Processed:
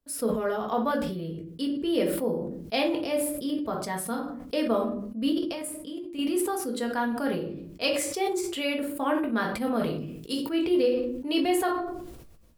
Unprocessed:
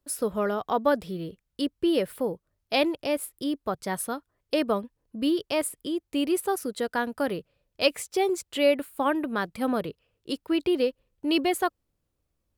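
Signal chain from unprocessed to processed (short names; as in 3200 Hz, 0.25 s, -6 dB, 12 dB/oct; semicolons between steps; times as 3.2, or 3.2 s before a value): 5.32–6.19 level quantiser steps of 16 dB; 9.85–10.49 high shelf 4800 Hz +10 dB; shoebox room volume 280 m³, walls furnished, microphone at 1.7 m; sustainer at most 42 dB/s; gain -5 dB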